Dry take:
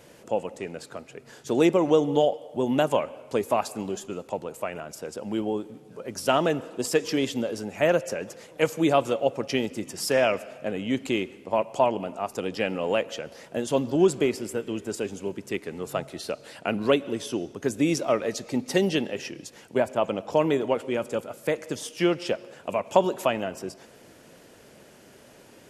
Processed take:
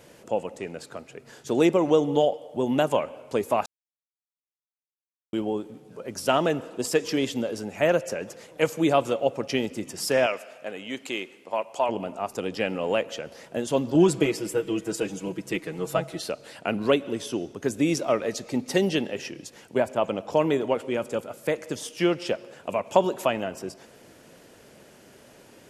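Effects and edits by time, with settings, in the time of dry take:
0:03.66–0:05.33: silence
0:10.26–0:11.89: high-pass filter 740 Hz 6 dB per octave
0:13.94–0:16.29: comb filter 6.2 ms, depth 94%

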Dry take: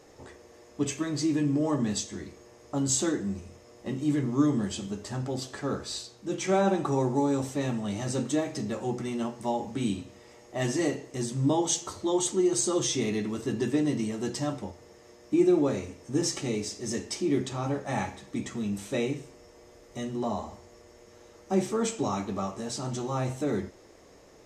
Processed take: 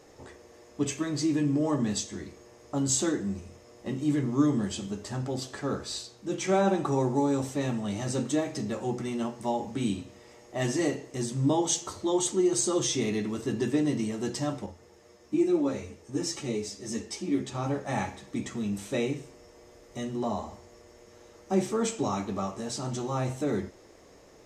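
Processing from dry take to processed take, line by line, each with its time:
0:14.66–0:17.55: string-ensemble chorus

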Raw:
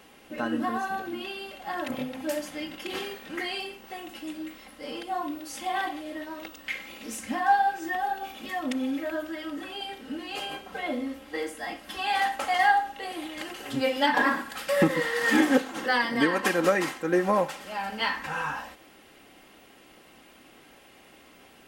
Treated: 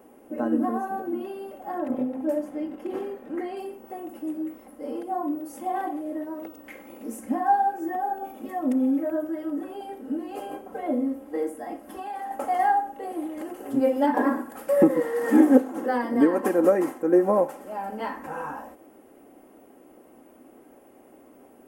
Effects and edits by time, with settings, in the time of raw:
0:01.78–0:03.57: high-shelf EQ 5,700 Hz −11.5 dB
0:11.61–0:12.31: downward compressor, threshold −30 dBFS
whole clip: drawn EQ curve 170 Hz 0 dB, 250 Hz +12 dB, 640 Hz +9 dB, 3,900 Hz −16 dB, 11,000 Hz +4 dB; level −5 dB

